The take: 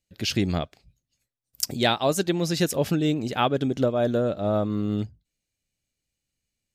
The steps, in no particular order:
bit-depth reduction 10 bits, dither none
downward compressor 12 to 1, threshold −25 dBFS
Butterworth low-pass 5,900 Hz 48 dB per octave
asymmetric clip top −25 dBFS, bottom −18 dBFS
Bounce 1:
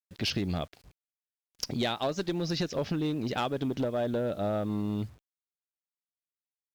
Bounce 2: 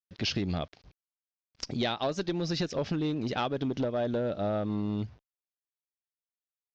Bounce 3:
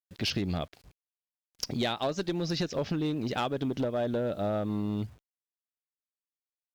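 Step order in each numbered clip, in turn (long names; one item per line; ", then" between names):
Butterworth low-pass, then downward compressor, then bit-depth reduction, then asymmetric clip
bit-depth reduction, then downward compressor, then asymmetric clip, then Butterworth low-pass
Butterworth low-pass, then bit-depth reduction, then downward compressor, then asymmetric clip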